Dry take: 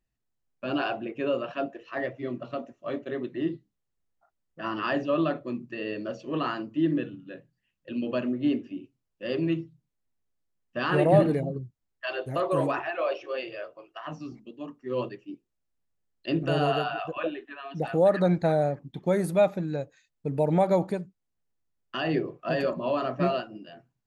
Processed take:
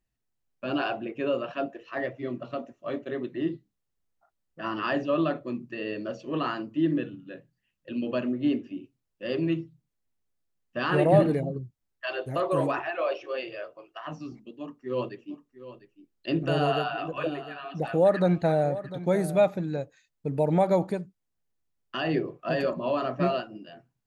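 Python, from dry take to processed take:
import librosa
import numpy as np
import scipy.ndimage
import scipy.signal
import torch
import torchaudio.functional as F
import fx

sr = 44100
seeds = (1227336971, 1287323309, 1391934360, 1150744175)

y = fx.echo_single(x, sr, ms=700, db=-14.5, at=(15.06, 19.77), fade=0.02)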